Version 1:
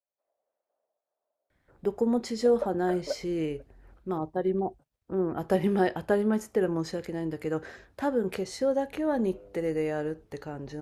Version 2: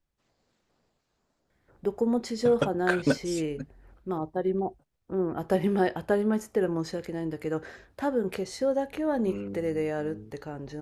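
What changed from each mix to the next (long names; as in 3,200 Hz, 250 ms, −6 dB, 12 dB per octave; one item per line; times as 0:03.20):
second voice: remove four-pole ladder band-pass 660 Hz, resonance 70%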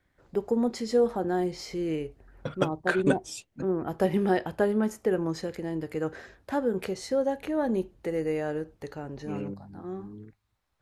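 first voice: entry −1.50 s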